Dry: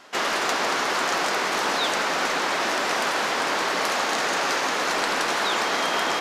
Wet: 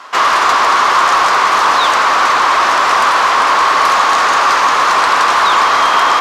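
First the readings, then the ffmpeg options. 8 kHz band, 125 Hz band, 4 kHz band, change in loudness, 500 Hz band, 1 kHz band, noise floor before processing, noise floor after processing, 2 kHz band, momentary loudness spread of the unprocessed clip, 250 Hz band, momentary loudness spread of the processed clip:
+6.5 dB, n/a, +8.5 dB, +13.0 dB, +6.5 dB, +16.5 dB, -26 dBFS, -12 dBFS, +11.0 dB, 1 LU, +3.0 dB, 1 LU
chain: -filter_complex "[0:a]equalizer=f=1.1k:t=o:w=0.56:g=13,asplit=2[a][b];[b]highpass=f=720:p=1,volume=12dB,asoftclip=type=tanh:threshold=-4dB[c];[a][c]amix=inputs=2:normalize=0,lowpass=f=6.7k:p=1,volume=-6dB,volume=3dB"

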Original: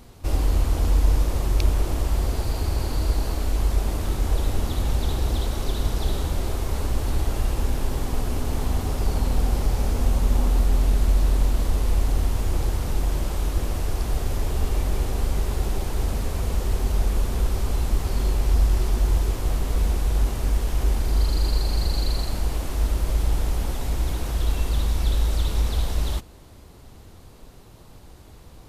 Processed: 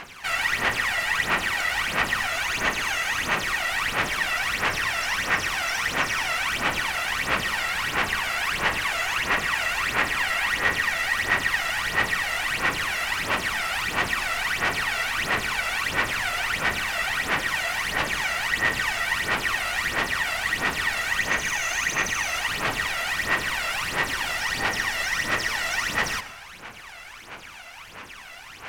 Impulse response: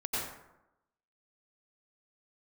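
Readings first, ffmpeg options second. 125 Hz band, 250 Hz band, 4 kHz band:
-16.0 dB, -5.5 dB, +9.0 dB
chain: -filter_complex "[0:a]asplit=2[a][b];[b]highpass=f=720:p=1,volume=28dB,asoftclip=type=tanh:threshold=-8dB[c];[a][c]amix=inputs=2:normalize=0,lowpass=f=2.9k:p=1,volume=-6dB,aeval=exprs='val(0)*sin(2*PI*1900*n/s)':c=same,aphaser=in_gain=1:out_gain=1:delay=1.5:decay=0.73:speed=1.5:type=sinusoidal,asplit=2[d][e];[1:a]atrim=start_sample=2205[f];[e][f]afir=irnorm=-1:irlink=0,volume=-17.5dB[g];[d][g]amix=inputs=2:normalize=0,volume=-8.5dB"

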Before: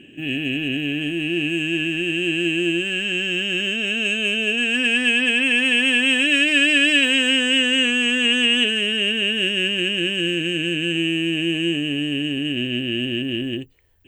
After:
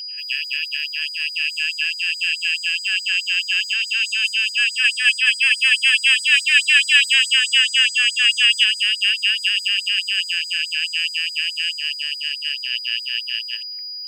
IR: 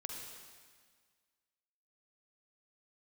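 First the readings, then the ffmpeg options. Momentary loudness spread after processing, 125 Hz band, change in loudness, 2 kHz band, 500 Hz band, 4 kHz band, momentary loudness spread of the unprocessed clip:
10 LU, under -40 dB, +2.0 dB, +2.0 dB, under -40 dB, +3.0 dB, 8 LU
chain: -af "aeval=exprs='val(0)+0.0224*sin(2*PI*4900*n/s)':c=same,afftfilt=real='re*gte(b*sr/1024,1000*pow(4300/1000,0.5+0.5*sin(2*PI*4.7*pts/sr)))':imag='im*gte(b*sr/1024,1000*pow(4300/1000,0.5+0.5*sin(2*PI*4.7*pts/sr)))':win_size=1024:overlap=0.75,volume=4.5dB"

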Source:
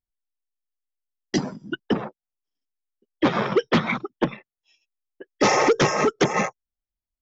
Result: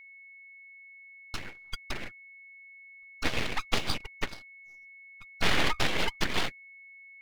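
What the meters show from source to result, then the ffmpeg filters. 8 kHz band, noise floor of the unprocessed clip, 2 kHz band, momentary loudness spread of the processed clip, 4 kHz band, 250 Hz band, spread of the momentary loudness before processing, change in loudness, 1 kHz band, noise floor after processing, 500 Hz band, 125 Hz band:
n/a, under -85 dBFS, -4.5 dB, 21 LU, -0.5 dB, -15.0 dB, 10 LU, -9.0 dB, -11.5 dB, -52 dBFS, -16.0 dB, -9.5 dB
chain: -af "highpass=f=580:t=q:w=0.5412,highpass=f=580:t=q:w=1.307,lowpass=f=3.4k:t=q:w=0.5176,lowpass=f=3.4k:t=q:w=0.7071,lowpass=f=3.4k:t=q:w=1.932,afreqshift=160,aeval=exprs='abs(val(0))':c=same,aeval=exprs='val(0)+0.00447*sin(2*PI*2200*n/s)':c=same,volume=-1.5dB"

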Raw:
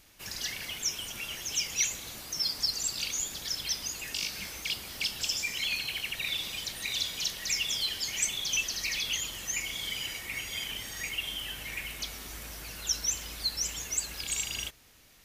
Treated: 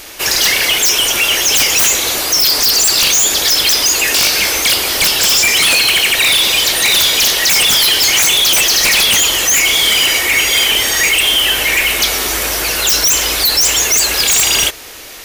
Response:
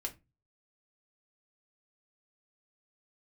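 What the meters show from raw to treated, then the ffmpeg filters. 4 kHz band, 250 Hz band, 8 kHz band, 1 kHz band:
+22.0 dB, +22.0 dB, +21.0 dB, +27.0 dB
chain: -af "lowshelf=f=270:t=q:w=1.5:g=-9.5,aeval=exprs='0.2*sin(PI/2*7.08*val(0)/0.2)':c=same,volume=6.5dB"

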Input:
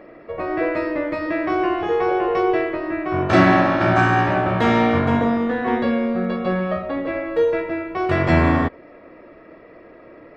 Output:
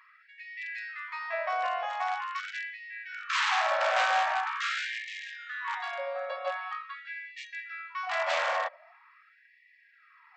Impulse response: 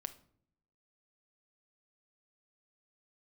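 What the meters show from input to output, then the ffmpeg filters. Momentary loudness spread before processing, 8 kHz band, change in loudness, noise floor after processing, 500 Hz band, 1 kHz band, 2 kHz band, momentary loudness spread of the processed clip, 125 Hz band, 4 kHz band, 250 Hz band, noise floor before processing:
8 LU, n/a, -11.5 dB, -62 dBFS, -16.5 dB, -9.0 dB, -6.5 dB, 14 LU, under -40 dB, -1.5 dB, under -40 dB, -45 dBFS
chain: -af "aresample=16000,aeval=exprs='0.224*(abs(mod(val(0)/0.224+3,4)-2)-1)':c=same,aresample=44100,afftfilt=real='re*gte(b*sr/1024,480*pow(1700/480,0.5+0.5*sin(2*PI*0.44*pts/sr)))':imag='im*gte(b*sr/1024,480*pow(1700/480,0.5+0.5*sin(2*PI*0.44*pts/sr)))':win_size=1024:overlap=0.75,volume=-5.5dB"

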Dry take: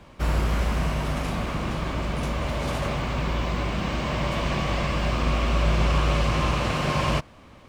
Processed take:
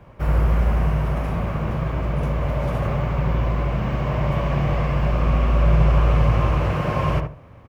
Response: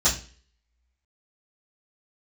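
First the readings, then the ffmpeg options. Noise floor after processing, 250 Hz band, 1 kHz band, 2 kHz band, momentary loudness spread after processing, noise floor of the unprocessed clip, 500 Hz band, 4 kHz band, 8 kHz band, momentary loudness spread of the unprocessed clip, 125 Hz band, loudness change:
-44 dBFS, +2.5 dB, +1.0 dB, -2.0 dB, 7 LU, -49 dBFS, +3.0 dB, -8.0 dB, under -10 dB, 6 LU, +6.5 dB, +4.0 dB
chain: -filter_complex "[0:a]equalizer=f=125:t=o:w=1:g=8,equalizer=f=250:t=o:w=1:g=-5,equalizer=f=500:t=o:w=1:g=3,equalizer=f=4k:t=o:w=1:g=-10,equalizer=f=8k:t=o:w=1:g=-11,asplit=2[a][b];[b]adelay=71,lowpass=f=1.3k:p=1,volume=-4dB,asplit=2[c][d];[d]adelay=71,lowpass=f=1.3k:p=1,volume=0.25,asplit=2[e][f];[f]adelay=71,lowpass=f=1.3k:p=1,volume=0.25[g];[a][c][e][g]amix=inputs=4:normalize=0"

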